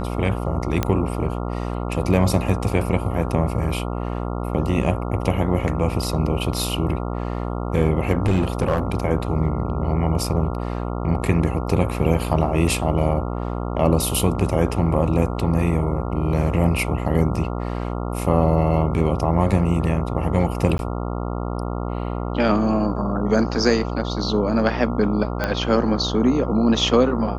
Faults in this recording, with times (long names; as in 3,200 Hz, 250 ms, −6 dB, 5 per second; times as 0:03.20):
mains buzz 60 Hz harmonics 23 −26 dBFS
0:00.83: click −7 dBFS
0:08.23–0:08.79: clipping −13 dBFS
0:20.78–0:20.79: drop-out 11 ms
0:25.44: click −9 dBFS